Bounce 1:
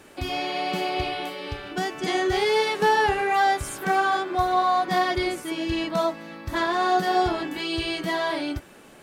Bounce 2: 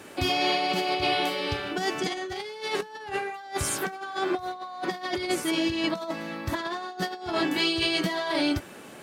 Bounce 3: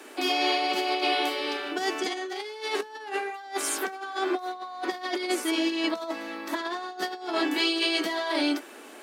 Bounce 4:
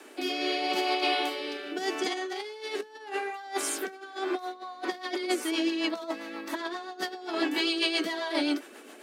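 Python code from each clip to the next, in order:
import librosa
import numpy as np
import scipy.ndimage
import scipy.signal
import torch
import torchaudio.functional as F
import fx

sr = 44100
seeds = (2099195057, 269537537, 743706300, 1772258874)

y1 = scipy.signal.sosfilt(scipy.signal.butter(2, 89.0, 'highpass', fs=sr, output='sos'), x)
y1 = fx.dynamic_eq(y1, sr, hz=4900.0, q=1.1, threshold_db=-44.0, ratio=4.0, max_db=4)
y1 = fx.over_compress(y1, sr, threshold_db=-28.0, ratio=-0.5)
y2 = scipy.signal.sosfilt(scipy.signal.butter(8, 250.0, 'highpass', fs=sr, output='sos'), y1)
y2 = fx.notch(y2, sr, hz=540.0, q=12.0)
y3 = fx.rotary_switch(y2, sr, hz=0.8, then_hz=7.5, switch_at_s=4.14)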